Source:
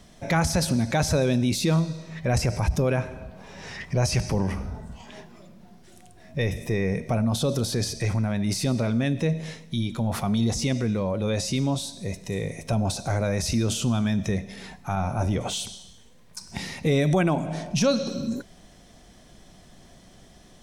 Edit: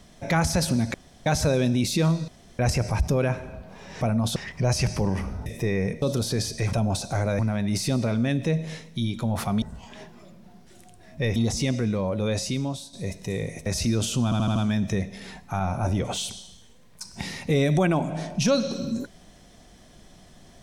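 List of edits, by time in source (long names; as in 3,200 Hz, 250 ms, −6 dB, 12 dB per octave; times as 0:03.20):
0:00.94: splice in room tone 0.32 s
0:01.96–0:02.27: fill with room tone
0:04.79–0:06.53: move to 0:10.38
0:07.09–0:07.44: move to 0:03.69
0:11.38–0:11.95: fade out, to −10 dB
0:12.68–0:13.34: move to 0:08.15
0:13.92: stutter 0.08 s, 5 plays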